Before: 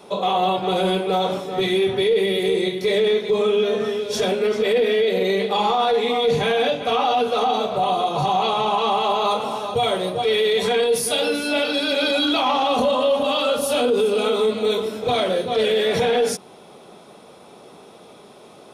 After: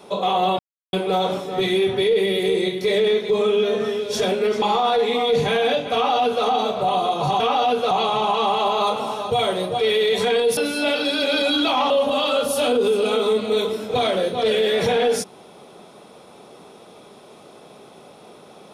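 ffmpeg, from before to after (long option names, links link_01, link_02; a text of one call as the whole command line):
ffmpeg -i in.wav -filter_complex "[0:a]asplit=8[link_01][link_02][link_03][link_04][link_05][link_06][link_07][link_08];[link_01]atrim=end=0.59,asetpts=PTS-STARTPTS,afade=type=out:start_time=0.586:duration=0.004:curve=hsin[link_09];[link_02]atrim=start=0.59:end=0.93,asetpts=PTS-STARTPTS,volume=0[link_10];[link_03]atrim=start=0.93:end=4.622,asetpts=PTS-STARTPTS,afade=type=in:duration=0.004:curve=hsin[link_11];[link_04]atrim=start=5.568:end=8.352[link_12];[link_05]atrim=start=6.888:end=7.402[link_13];[link_06]atrim=start=8.348:end=11.012[link_14];[link_07]atrim=start=11.258:end=12.592[link_15];[link_08]atrim=start=13.028[link_16];[link_09][link_10][link_11]concat=n=3:v=0:a=1[link_17];[link_17][link_12]acrossfade=duration=0.004:curve1=hsin:curve2=hsin[link_18];[link_18][link_13]acrossfade=duration=0.004:curve1=hsin:curve2=hsin[link_19];[link_19][link_14]acrossfade=duration=0.004:curve1=hsin:curve2=hsin[link_20];[link_20][link_15]acrossfade=duration=0.004:curve1=hsin:curve2=hsin[link_21];[link_21][link_16]acrossfade=duration=0.004:curve1=hsin:curve2=hsin" out.wav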